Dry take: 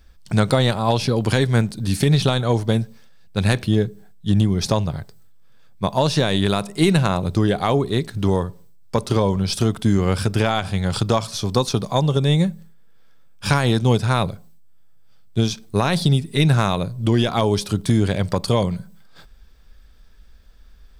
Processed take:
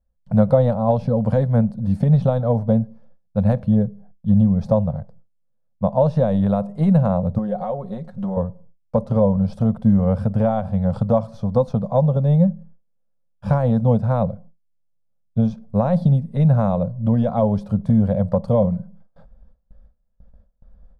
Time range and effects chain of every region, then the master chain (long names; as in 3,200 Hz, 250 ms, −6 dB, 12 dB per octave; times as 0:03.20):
0:07.38–0:08.37: parametric band 72 Hz −14 dB 2.3 octaves + downward compressor 4 to 1, threshold −22 dBFS + comb filter 5.5 ms, depth 63%
whole clip: high-shelf EQ 6,700 Hz −5.5 dB; noise gate with hold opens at −38 dBFS; drawn EQ curve 120 Hz 0 dB, 220 Hz +5 dB, 360 Hz −22 dB, 520 Hz +7 dB, 2,500 Hz −23 dB, 6,500 Hz −26 dB